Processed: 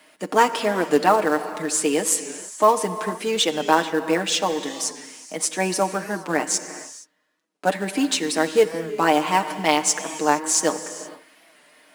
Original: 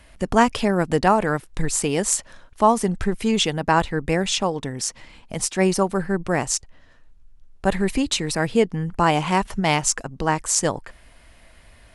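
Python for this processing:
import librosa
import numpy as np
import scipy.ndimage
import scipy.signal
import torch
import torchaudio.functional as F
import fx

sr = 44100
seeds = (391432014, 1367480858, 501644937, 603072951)

p1 = scipy.signal.sosfilt(scipy.signal.butter(6, 220.0, 'highpass', fs=sr, output='sos'), x)
p2 = p1 + 0.71 * np.pad(p1, (int(6.5 * sr / 1000.0), 0))[:len(p1)]
p3 = fx.quant_companded(p2, sr, bits=4)
p4 = p2 + (p3 * 10.0 ** (-7.0 / 20.0))
p5 = fx.rev_gated(p4, sr, seeds[0], gate_ms=490, shape='flat', drr_db=10.5)
p6 = fx.record_warp(p5, sr, rpm=45.0, depth_cents=100.0)
y = p6 * 10.0 ** (-4.5 / 20.0)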